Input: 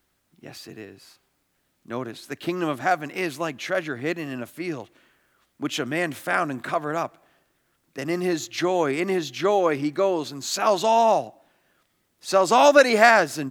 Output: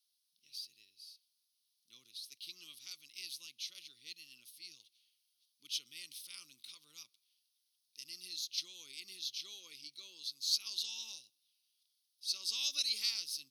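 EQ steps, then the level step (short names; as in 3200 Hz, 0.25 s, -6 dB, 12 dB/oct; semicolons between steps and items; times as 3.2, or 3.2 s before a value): running mean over 6 samples; inverse Chebyshev high-pass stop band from 1800 Hz, stop band 50 dB; +8.0 dB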